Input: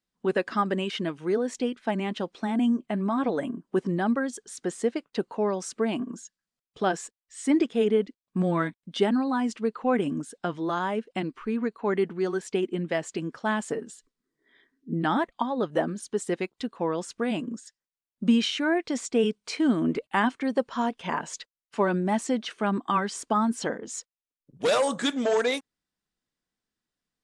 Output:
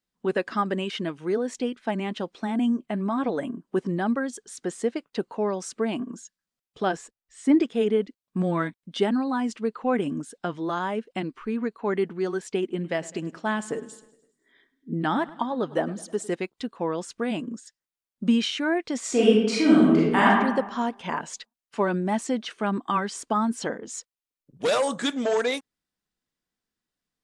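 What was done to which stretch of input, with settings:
6.96–7.60 s: tilt EQ -2 dB/octave
12.60–16.35 s: feedback delay 103 ms, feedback 58%, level -19.5 dB
18.99–20.26 s: reverb throw, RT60 1.1 s, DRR -6.5 dB

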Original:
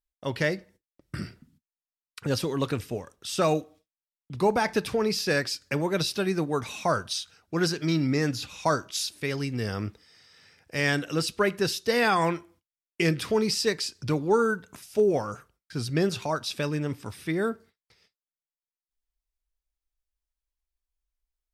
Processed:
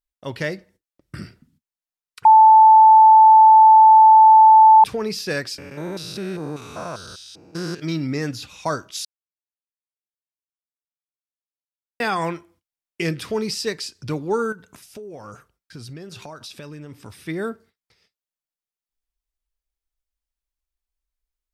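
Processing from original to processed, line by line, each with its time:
2.25–4.84 s: bleep 877 Hz -6 dBFS
5.58–7.80 s: spectrogram pixelated in time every 200 ms
9.05–12.00 s: mute
14.52–17.23 s: compression 16:1, threshold -33 dBFS

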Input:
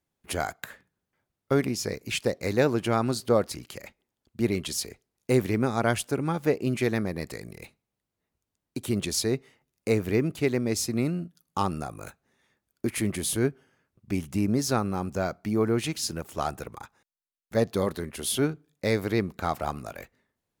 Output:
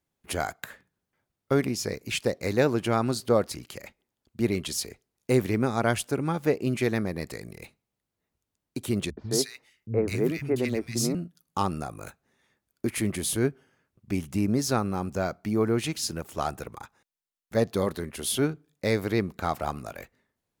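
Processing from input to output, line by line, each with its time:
9.10–11.15 s: three bands offset in time lows, mids, highs 70/210 ms, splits 190/1600 Hz

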